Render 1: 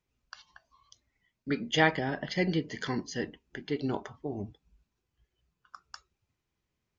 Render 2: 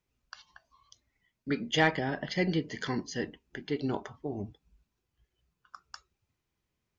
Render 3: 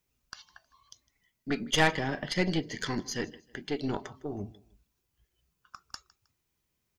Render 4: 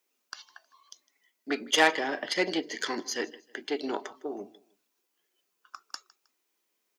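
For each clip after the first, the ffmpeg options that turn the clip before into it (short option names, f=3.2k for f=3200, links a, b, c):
-af "asoftclip=type=tanh:threshold=-11.5dB"
-af "aecho=1:1:157|314:0.0794|0.0262,crystalizer=i=1.5:c=0,aeval=exprs='0.251*(cos(1*acos(clip(val(0)/0.251,-1,1)))-cos(1*PI/2))+0.0447*(cos(4*acos(clip(val(0)/0.251,-1,1)))-cos(4*PI/2))':c=same"
-af "highpass=f=300:w=0.5412,highpass=f=300:w=1.3066,volume=3dB"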